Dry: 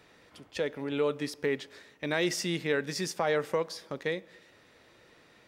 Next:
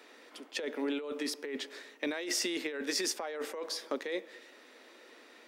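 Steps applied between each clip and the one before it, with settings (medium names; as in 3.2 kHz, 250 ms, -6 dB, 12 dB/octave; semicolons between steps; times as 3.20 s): Chebyshev high-pass 240 Hz, order 5; compressor with a negative ratio -35 dBFS, ratio -1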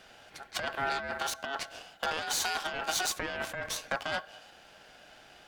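Chebyshev shaper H 8 -17 dB, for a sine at -19.5 dBFS; ring modulator 1.1 kHz; trim +4 dB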